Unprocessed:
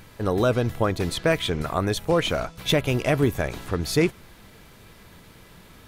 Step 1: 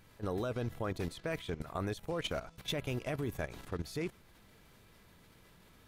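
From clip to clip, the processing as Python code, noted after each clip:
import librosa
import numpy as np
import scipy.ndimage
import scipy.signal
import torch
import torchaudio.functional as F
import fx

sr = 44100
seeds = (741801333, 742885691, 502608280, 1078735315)

y = fx.level_steps(x, sr, step_db=13)
y = y * 10.0 ** (-9.0 / 20.0)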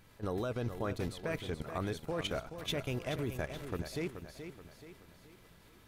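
y = fx.echo_feedback(x, sr, ms=428, feedback_pct=46, wet_db=-9.5)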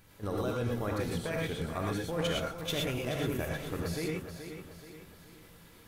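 y = fx.high_shelf(x, sr, hz=7400.0, db=6.0)
y = fx.rev_gated(y, sr, seeds[0], gate_ms=140, shape='rising', drr_db=-1.5)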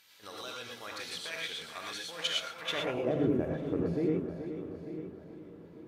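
y = fx.echo_feedback(x, sr, ms=894, feedback_pct=31, wet_db=-13.0)
y = y + 10.0 ** (-62.0 / 20.0) * np.sin(2.0 * np.pi * 14000.0 * np.arange(len(y)) / sr)
y = fx.filter_sweep_bandpass(y, sr, from_hz=4100.0, to_hz=300.0, start_s=2.46, end_s=3.19, q=1.2)
y = y * 10.0 ** (7.5 / 20.0)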